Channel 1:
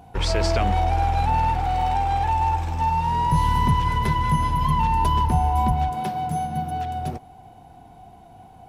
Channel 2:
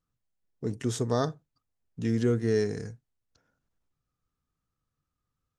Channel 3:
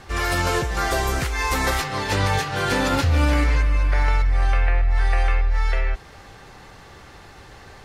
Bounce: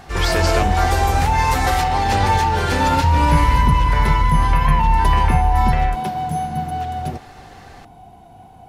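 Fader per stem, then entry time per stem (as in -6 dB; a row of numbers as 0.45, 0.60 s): +3.0, -5.5, +0.5 dB; 0.00, 0.00, 0.00 s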